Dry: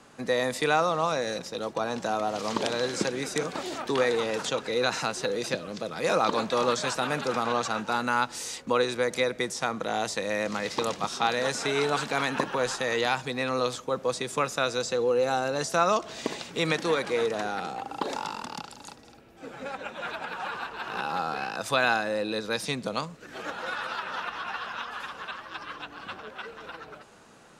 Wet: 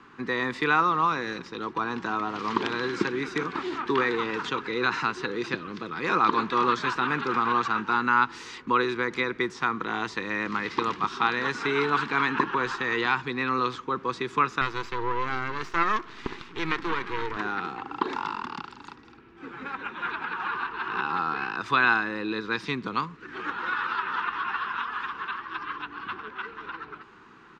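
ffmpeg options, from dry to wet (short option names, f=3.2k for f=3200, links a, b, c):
-filter_complex "[0:a]asettb=1/sr,asplit=3[a][b][c];[a]atrim=end=14.614[d];[b]atrim=start=14.61:end=17.37,asetpts=PTS-STARTPTS,afade=t=in:d=0.004:c=qsin,afade=t=out:st=2.756:d=0.004:c=qsin,aeval=exprs='max(val(0),0)':c=same[e];[c]atrim=start=17.366[f];[d][e]acrossfade=d=0.004:c1=hsin:c2=qsin[g];[g][f]acrossfade=d=0.004:c1=qsin:c2=hsin,firequalizer=gain_entry='entry(200,0);entry(370,6);entry(580,-17);entry(1000,7);entry(9900,-26)':delay=0.05:min_phase=1"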